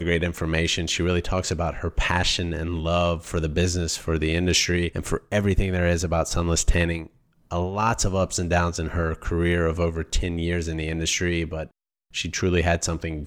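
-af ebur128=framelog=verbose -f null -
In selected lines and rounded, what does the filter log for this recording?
Integrated loudness:
  I:         -24.2 LUFS
  Threshold: -34.3 LUFS
Loudness range:
  LRA:         2.4 LU
  Threshold: -44.3 LUFS
  LRA low:   -25.6 LUFS
  LRA high:  -23.2 LUFS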